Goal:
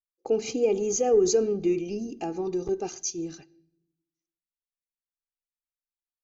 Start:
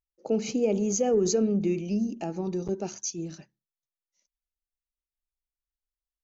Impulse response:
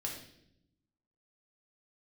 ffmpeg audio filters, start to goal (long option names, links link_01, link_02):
-filter_complex "[0:a]agate=range=-21dB:threshold=-46dB:ratio=16:detection=peak,aecho=1:1:2.5:0.64,asplit=2[link_01][link_02];[1:a]atrim=start_sample=2205[link_03];[link_02][link_03]afir=irnorm=-1:irlink=0,volume=-17.5dB[link_04];[link_01][link_04]amix=inputs=2:normalize=0,volume=-1dB"